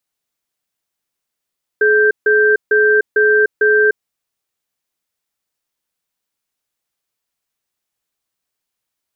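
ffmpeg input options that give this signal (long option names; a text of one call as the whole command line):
ffmpeg -f lavfi -i "aevalsrc='0.266*(sin(2*PI*425*t)+sin(2*PI*1570*t))*clip(min(mod(t,0.45),0.3-mod(t,0.45))/0.005,0,1)':duration=2.17:sample_rate=44100" out.wav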